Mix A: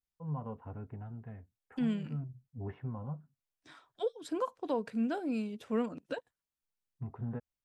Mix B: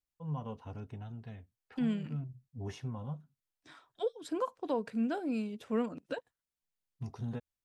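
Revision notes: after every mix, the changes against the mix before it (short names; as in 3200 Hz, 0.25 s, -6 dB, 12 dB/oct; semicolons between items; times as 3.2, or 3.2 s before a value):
first voice: remove LPF 1900 Hz 24 dB/oct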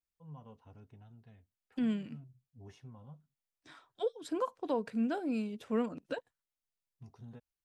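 first voice -12.0 dB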